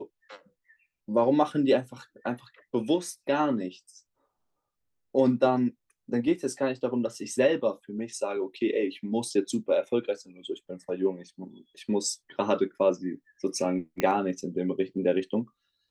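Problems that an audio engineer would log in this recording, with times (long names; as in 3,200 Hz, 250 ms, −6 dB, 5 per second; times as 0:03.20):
0:14.00: click −13 dBFS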